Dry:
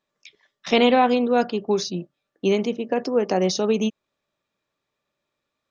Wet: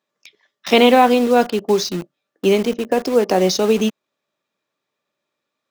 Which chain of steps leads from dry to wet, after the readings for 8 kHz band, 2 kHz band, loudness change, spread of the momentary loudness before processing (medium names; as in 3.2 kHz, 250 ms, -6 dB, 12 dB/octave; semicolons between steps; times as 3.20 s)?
no reading, +5.5 dB, +5.5 dB, 10 LU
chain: high-pass 170 Hz 12 dB/octave; in parallel at -4.5 dB: bit crusher 5-bit; on the sum: trim +1.5 dB